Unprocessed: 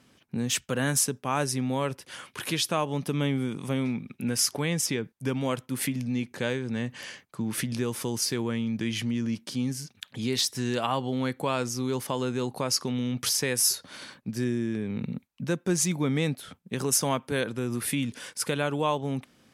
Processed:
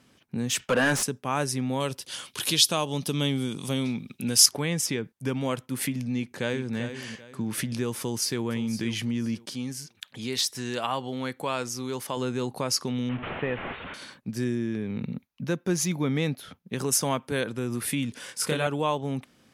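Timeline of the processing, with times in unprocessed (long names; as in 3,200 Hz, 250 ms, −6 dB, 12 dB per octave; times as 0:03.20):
0:00.59–0:01.03: mid-hump overdrive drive 22 dB, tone 1,900 Hz, clips at −11.5 dBFS
0:01.80–0:04.46: high shelf with overshoot 2,700 Hz +7.5 dB, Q 1.5
0:06.14–0:06.76: delay throw 390 ms, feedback 30%, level −9.5 dB
0:07.99–0:08.43: delay throw 510 ms, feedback 25%, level −13.5 dB
0:09.49–0:12.17: low-shelf EQ 360 Hz −6.5 dB
0:13.09–0:13.94: linear delta modulator 16 kbit/s, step −31.5 dBFS
0:14.55–0:16.75: parametric band 8,200 Hz −12 dB 0.24 octaves
0:18.26–0:18.67: double-tracking delay 26 ms −2.5 dB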